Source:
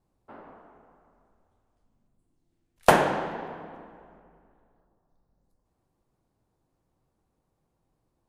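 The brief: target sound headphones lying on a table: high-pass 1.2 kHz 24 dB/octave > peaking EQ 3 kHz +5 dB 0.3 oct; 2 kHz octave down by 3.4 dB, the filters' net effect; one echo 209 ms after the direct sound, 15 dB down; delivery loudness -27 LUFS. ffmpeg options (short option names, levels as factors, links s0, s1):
-af "highpass=f=1200:w=0.5412,highpass=f=1200:w=1.3066,equalizer=f=2000:t=o:g=-4.5,equalizer=f=3000:t=o:w=0.3:g=5,aecho=1:1:209:0.178,volume=1.68"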